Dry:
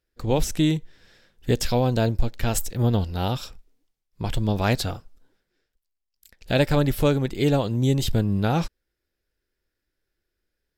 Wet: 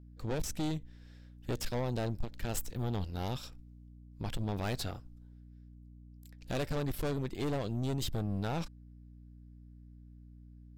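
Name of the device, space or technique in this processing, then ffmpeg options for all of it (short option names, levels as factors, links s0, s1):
valve amplifier with mains hum: -af "aeval=exprs='(tanh(15.8*val(0)+0.6)-tanh(0.6))/15.8':c=same,aeval=exprs='val(0)+0.00562*(sin(2*PI*60*n/s)+sin(2*PI*2*60*n/s)/2+sin(2*PI*3*60*n/s)/3+sin(2*PI*4*60*n/s)/4+sin(2*PI*5*60*n/s)/5)':c=same,volume=0.473"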